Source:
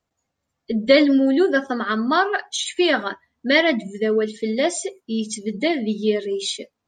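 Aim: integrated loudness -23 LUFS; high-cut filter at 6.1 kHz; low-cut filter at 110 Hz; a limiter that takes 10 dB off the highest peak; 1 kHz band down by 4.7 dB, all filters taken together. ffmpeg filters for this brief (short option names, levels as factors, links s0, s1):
-af "highpass=110,lowpass=6100,equalizer=f=1000:t=o:g=-7,volume=1.19,alimiter=limit=0.237:level=0:latency=1"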